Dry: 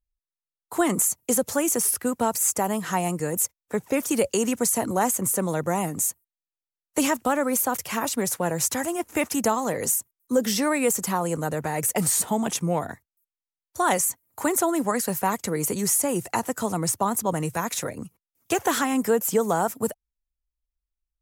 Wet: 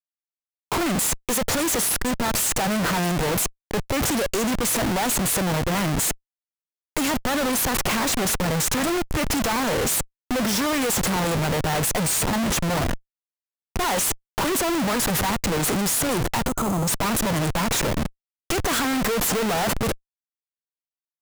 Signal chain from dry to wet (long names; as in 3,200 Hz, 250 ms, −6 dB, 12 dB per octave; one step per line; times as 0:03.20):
comparator with hysteresis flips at −34 dBFS
gain on a spectral selection 0:16.48–0:16.88, 1,400–6,100 Hz −10 dB
level +3.5 dB